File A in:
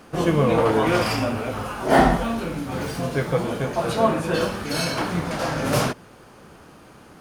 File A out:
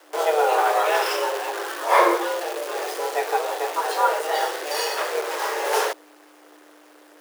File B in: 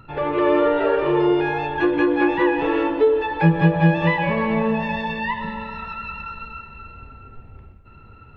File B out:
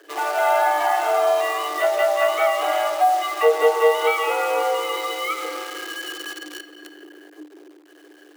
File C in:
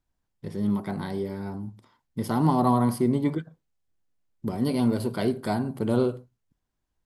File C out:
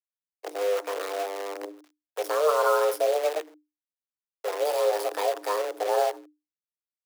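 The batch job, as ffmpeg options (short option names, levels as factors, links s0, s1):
-af "acrusher=bits=6:dc=4:mix=0:aa=0.000001,afreqshift=300,volume=0.891"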